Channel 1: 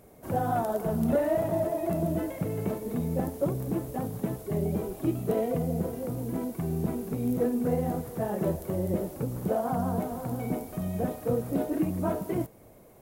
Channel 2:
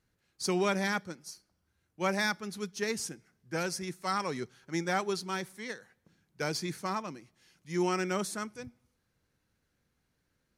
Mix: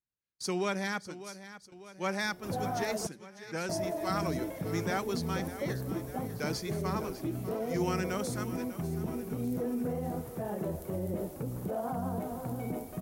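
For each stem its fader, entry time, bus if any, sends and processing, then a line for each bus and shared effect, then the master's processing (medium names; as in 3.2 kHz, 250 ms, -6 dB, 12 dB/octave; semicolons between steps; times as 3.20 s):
-3.5 dB, 2.20 s, muted 3.07–3.69 s, no send, no echo send, peak limiter -22.5 dBFS, peak gain reduction 7 dB
-3.0 dB, 0.00 s, no send, echo send -14 dB, none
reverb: none
echo: feedback delay 598 ms, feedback 57%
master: gate with hold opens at -41 dBFS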